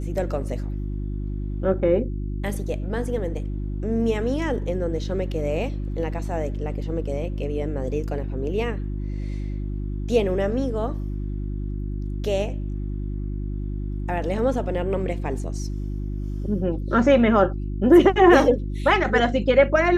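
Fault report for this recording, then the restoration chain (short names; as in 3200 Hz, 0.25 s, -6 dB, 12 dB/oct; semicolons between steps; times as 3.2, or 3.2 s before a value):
hum 50 Hz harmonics 7 -28 dBFS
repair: de-hum 50 Hz, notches 7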